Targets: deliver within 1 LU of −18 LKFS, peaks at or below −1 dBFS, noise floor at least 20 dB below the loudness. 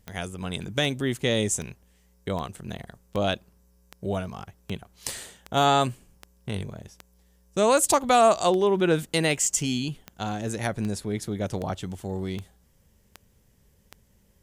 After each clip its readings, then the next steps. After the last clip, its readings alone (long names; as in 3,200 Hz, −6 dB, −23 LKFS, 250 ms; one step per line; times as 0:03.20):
number of clicks 19; integrated loudness −26.0 LKFS; sample peak −8.0 dBFS; target loudness −18.0 LKFS
→ click removal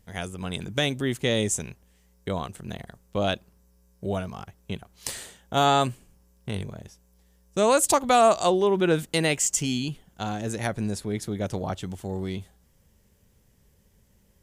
number of clicks 0; integrated loudness −26.0 LKFS; sample peak −8.0 dBFS; target loudness −18.0 LKFS
→ level +8 dB
brickwall limiter −1 dBFS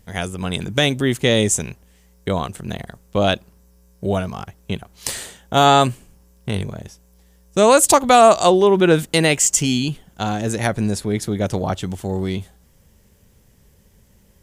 integrated loudness −18.0 LKFS; sample peak −1.0 dBFS; background noise floor −54 dBFS